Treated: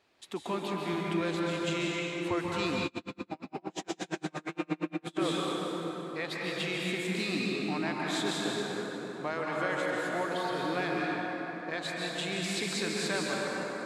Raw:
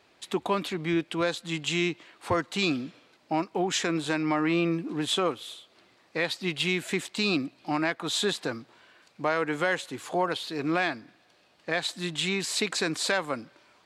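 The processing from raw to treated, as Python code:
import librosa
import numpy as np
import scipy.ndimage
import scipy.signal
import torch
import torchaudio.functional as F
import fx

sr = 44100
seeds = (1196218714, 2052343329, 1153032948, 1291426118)

y = fx.rev_plate(x, sr, seeds[0], rt60_s=4.8, hf_ratio=0.45, predelay_ms=120, drr_db=-4.0)
y = fx.tremolo_db(y, sr, hz=8.6, depth_db=39, at=(2.86, 5.17))
y = F.gain(torch.from_numpy(y), -8.5).numpy()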